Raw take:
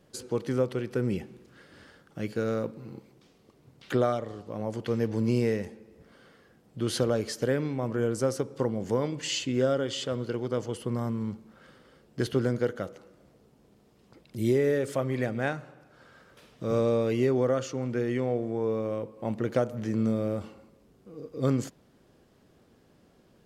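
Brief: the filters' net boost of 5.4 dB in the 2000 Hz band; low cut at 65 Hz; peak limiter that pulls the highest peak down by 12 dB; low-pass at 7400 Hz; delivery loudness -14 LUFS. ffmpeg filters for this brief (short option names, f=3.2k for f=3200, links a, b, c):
-af "highpass=65,lowpass=7.4k,equalizer=f=2k:t=o:g=7,volume=19.5dB,alimiter=limit=-3dB:level=0:latency=1"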